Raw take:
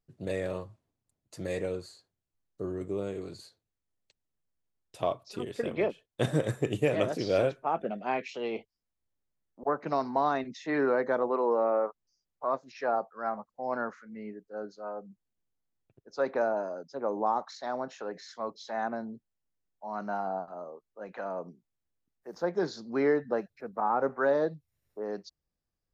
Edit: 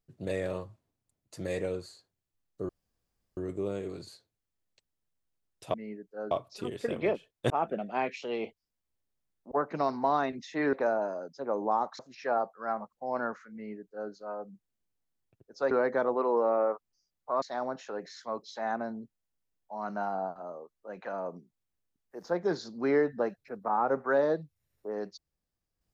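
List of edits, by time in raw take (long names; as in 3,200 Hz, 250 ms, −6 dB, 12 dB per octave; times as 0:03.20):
0:02.69: splice in room tone 0.68 s
0:06.25–0:07.62: remove
0:10.85–0:12.56: swap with 0:16.28–0:17.54
0:14.11–0:14.68: duplicate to 0:05.06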